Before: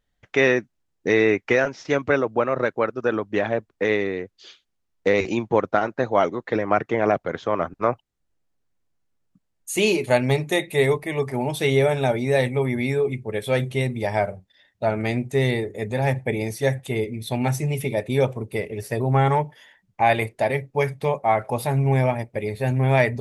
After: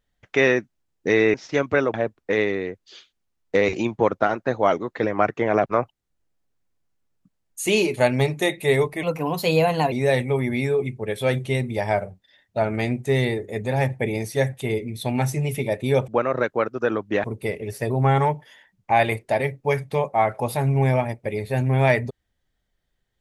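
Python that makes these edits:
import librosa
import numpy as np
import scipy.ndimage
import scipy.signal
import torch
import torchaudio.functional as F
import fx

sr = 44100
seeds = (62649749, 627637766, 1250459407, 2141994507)

y = fx.edit(x, sr, fx.cut(start_s=1.34, length_s=0.36),
    fx.move(start_s=2.3, length_s=1.16, to_s=18.34),
    fx.cut(start_s=7.18, length_s=0.58),
    fx.speed_span(start_s=11.13, length_s=1.05, speed=1.18), tone=tone)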